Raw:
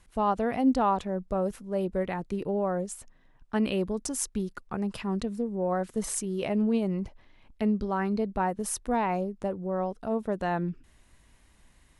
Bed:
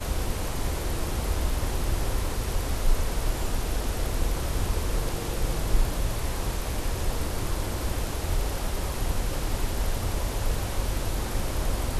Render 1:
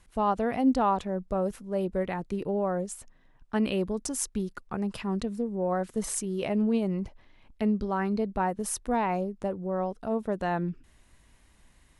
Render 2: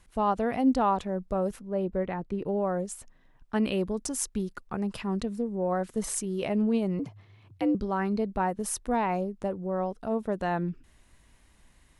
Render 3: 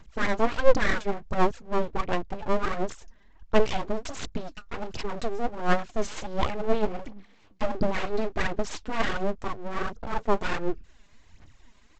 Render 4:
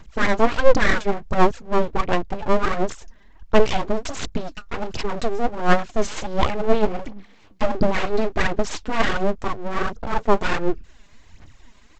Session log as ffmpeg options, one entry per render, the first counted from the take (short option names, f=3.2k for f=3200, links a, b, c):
-af anull
-filter_complex "[0:a]asettb=1/sr,asplit=3[a][b][c];[a]atrim=end=1.594[d];[b]atrim=start=1.59:end=2.46,asetpts=PTS-STARTPTS,afade=t=in:d=0.004:c=qsin,afade=t=out:st=0.866:d=0.004:c=qsin,lowpass=f=1.9k:p=1[e];[c]atrim=start=2.456[f];[d][e]acrossfade=d=0.004:c1=hsin:c2=qsin[g];[g][f]acrossfade=d=0.004:c1=qsin:c2=hsin,asettb=1/sr,asplit=3[h][i][j];[h]atrim=end=6.994[k];[i]atrim=start=6.99:end=7.75,asetpts=PTS-STARTPTS,afade=t=in:d=0.004:c=qsin,afade=t=out:st=0.756:d=0.004:c=qsin,afreqshift=87[l];[j]atrim=start=7.746[m];[k][l]acrossfade=d=0.004:c1=hsin:c2=qsin[n];[n][m]acrossfade=d=0.004:c1=qsin:c2=hsin"
-af "aphaser=in_gain=1:out_gain=1:delay=5:decay=0.74:speed=1.4:type=sinusoidal,aresample=16000,aeval=exprs='abs(val(0))':c=same,aresample=44100"
-af "volume=6.5dB,alimiter=limit=-1dB:level=0:latency=1"